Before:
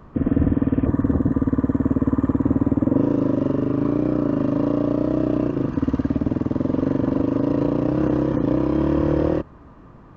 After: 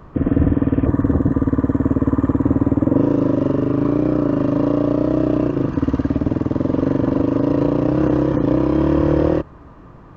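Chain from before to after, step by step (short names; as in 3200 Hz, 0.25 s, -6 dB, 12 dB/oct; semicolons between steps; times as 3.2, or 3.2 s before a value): bell 230 Hz -6.5 dB 0.22 oct; gain +4 dB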